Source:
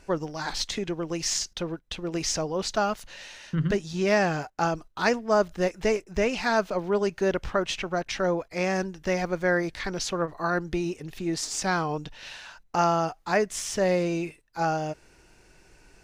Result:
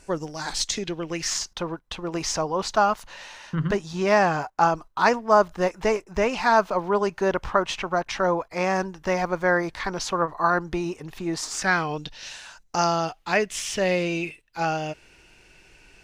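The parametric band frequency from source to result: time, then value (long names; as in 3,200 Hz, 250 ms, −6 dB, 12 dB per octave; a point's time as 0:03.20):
parametric band +10.5 dB 0.94 octaves
0:00.60 8,600 Hz
0:01.41 1,000 Hz
0:11.43 1,000 Hz
0:12.44 9,100 Hz
0:13.23 2,800 Hz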